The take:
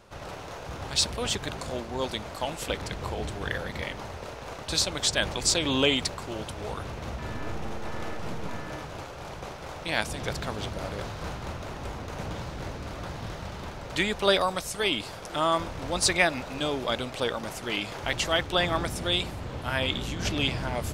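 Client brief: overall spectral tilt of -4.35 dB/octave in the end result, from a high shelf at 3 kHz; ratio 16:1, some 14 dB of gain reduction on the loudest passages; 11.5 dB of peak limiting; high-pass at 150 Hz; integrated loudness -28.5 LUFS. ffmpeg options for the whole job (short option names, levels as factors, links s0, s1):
-af "highpass=150,highshelf=f=3000:g=-7.5,acompressor=threshold=0.0251:ratio=16,volume=3.98,alimiter=limit=0.133:level=0:latency=1"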